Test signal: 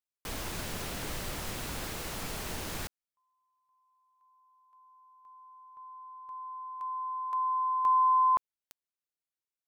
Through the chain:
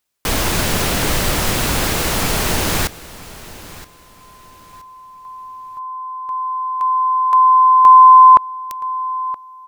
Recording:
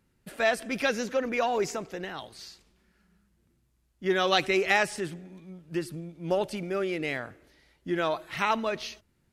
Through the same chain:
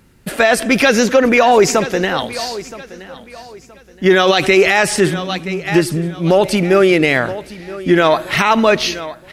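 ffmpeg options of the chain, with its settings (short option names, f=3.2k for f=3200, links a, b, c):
-filter_complex "[0:a]asplit=2[a][b];[b]aecho=0:1:972|1944|2916:0.126|0.0378|0.0113[c];[a][c]amix=inputs=2:normalize=0,alimiter=level_in=20.5dB:limit=-1dB:release=50:level=0:latency=1,volume=-1dB"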